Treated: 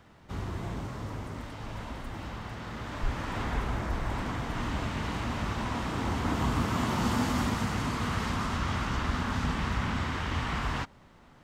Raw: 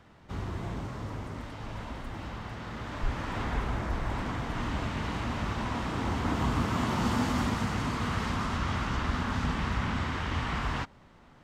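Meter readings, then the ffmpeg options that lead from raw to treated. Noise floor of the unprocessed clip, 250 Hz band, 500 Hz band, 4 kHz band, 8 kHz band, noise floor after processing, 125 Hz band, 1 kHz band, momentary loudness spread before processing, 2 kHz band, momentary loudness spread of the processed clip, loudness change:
-56 dBFS, 0.0 dB, 0.0 dB, +1.0 dB, +2.5 dB, -56 dBFS, 0.0 dB, 0.0 dB, 11 LU, 0.0 dB, 11 LU, 0.0 dB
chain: -af "highshelf=f=8.7k:g=6.5"

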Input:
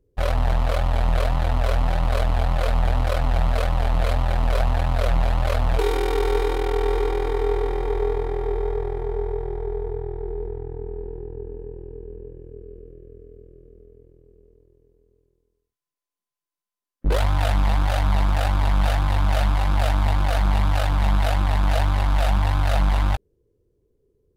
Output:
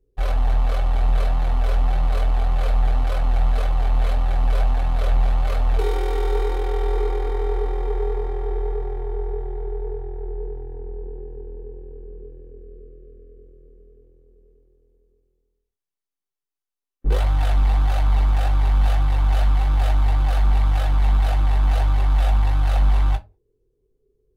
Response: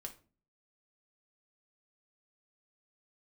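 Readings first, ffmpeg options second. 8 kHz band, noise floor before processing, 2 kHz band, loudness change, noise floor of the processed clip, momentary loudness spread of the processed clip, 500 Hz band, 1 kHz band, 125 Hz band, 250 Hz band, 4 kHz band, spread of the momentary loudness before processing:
n/a, under -85 dBFS, -5.0 dB, +1.0 dB, under -85 dBFS, 13 LU, -4.0 dB, -3.0 dB, +0.5 dB, -5.0 dB, -4.5 dB, 12 LU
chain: -filter_complex "[1:a]atrim=start_sample=2205,asetrate=83790,aresample=44100[a];[0:a][a]afir=irnorm=-1:irlink=0,volume=5dB"

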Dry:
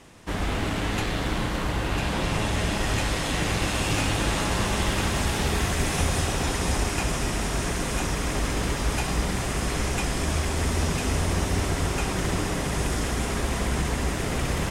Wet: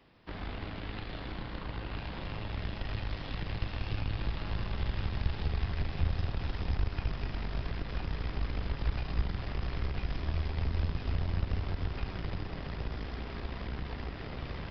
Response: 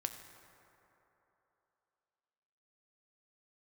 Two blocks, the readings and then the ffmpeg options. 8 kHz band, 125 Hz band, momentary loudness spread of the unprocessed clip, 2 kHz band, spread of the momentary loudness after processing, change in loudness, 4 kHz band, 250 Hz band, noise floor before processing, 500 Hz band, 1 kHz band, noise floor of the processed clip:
under -40 dB, -7.5 dB, 3 LU, -15.0 dB, 7 LU, -10.5 dB, -15.0 dB, -13.5 dB, -29 dBFS, -14.5 dB, -15.0 dB, -42 dBFS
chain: -filter_complex "[0:a]dynaudnorm=f=580:g=11:m=5dB,aeval=exprs='0.501*(cos(1*acos(clip(val(0)/0.501,-1,1)))-cos(1*PI/2))+0.141*(cos(2*acos(clip(val(0)/0.501,-1,1)))-cos(2*PI/2))+0.126*(cos(3*acos(clip(val(0)/0.501,-1,1)))-cos(3*PI/2))':c=same,asoftclip=type=tanh:threshold=-11.5dB,acrossover=split=130[a][b];[b]acompressor=threshold=-39dB:ratio=10[c];[a][c]amix=inputs=2:normalize=0,aresample=11025,aresample=44100"

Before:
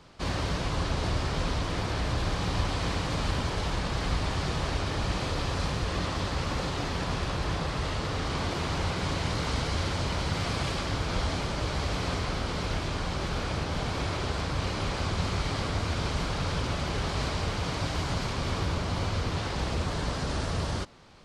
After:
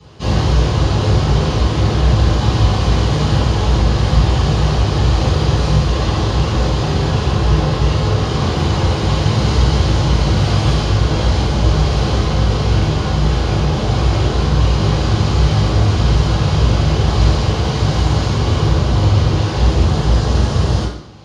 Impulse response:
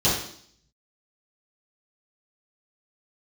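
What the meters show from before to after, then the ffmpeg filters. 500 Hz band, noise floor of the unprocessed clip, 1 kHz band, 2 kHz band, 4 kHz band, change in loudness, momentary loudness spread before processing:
+13.5 dB, -33 dBFS, +11.0 dB, +8.0 dB, +10.5 dB, +15.0 dB, 2 LU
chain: -filter_complex "[1:a]atrim=start_sample=2205[a];[0:a][a]afir=irnorm=-1:irlink=0,volume=-6dB"

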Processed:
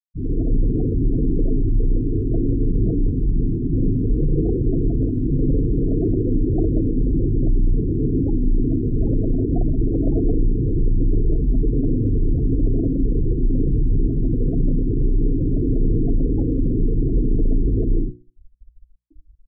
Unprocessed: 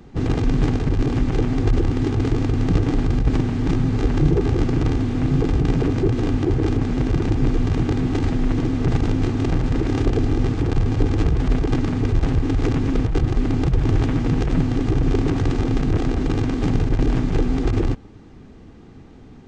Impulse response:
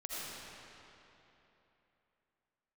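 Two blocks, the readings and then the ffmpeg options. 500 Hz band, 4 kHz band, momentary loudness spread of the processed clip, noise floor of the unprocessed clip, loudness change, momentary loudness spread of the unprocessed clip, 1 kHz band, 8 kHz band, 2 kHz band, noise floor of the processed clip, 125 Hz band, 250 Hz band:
-1.0 dB, under -40 dB, 2 LU, -43 dBFS, -0.5 dB, 2 LU, under -15 dB, n/a, under -40 dB, -48 dBFS, -1.5 dB, -0.5 dB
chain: -filter_complex "[0:a]lowpass=f=1.1k:w=0.5412,lowpass=f=1.1k:w=1.3066[a];[1:a]atrim=start_sample=2205,afade=t=out:st=0.22:d=0.01,atrim=end_sample=10143[b];[a][b]afir=irnorm=-1:irlink=0,asplit=2[c][d];[d]acrusher=samples=31:mix=1:aa=0.000001,volume=-7dB[e];[c][e]amix=inputs=2:normalize=0,dynaudnorm=f=200:g=3:m=5.5dB,asoftclip=type=tanh:threshold=-12dB,afftfilt=real='re*gte(hypot(re,im),0.178)':imag='im*gte(hypot(re,im),0.178)':win_size=1024:overlap=0.75,bandreject=f=60:t=h:w=6,bandreject=f=120:t=h:w=6,bandreject=f=180:t=h:w=6,bandreject=f=240:t=h:w=6,bandreject=f=300:t=h:w=6,bandreject=f=360:t=h:w=6,bandreject=f=420:t=h:w=6,bandreject=f=480:t=h:w=6"

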